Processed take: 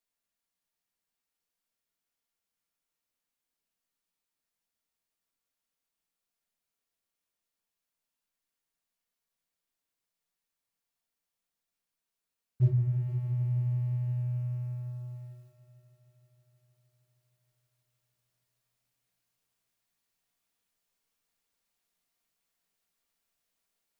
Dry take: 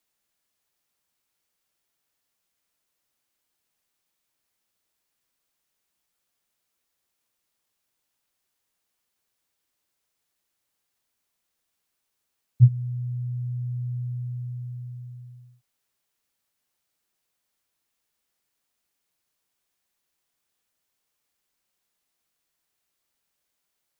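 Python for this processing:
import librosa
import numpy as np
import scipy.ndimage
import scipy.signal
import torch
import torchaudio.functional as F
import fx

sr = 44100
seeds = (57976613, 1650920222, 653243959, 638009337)

y = fx.rider(x, sr, range_db=3, speed_s=0.5)
y = fx.leveller(y, sr, passes=1)
y = fx.echo_heads(y, sr, ms=156, heads='all three', feedback_pct=68, wet_db=-16.0)
y = fx.room_shoebox(y, sr, seeds[0], volume_m3=500.0, walls='furnished', distance_m=1.7)
y = y * librosa.db_to_amplitude(-7.0)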